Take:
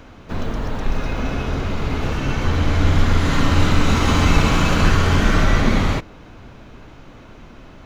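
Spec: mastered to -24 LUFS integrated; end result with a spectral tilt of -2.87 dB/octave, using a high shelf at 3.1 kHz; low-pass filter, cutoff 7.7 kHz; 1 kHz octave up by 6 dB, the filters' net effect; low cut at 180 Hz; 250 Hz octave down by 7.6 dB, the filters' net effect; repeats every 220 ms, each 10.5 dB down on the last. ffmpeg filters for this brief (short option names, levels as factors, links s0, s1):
-af "highpass=180,lowpass=7700,equalizer=f=250:t=o:g=-8.5,equalizer=f=1000:t=o:g=8.5,highshelf=f=3100:g=-5,aecho=1:1:220|440|660:0.299|0.0896|0.0269,volume=0.668"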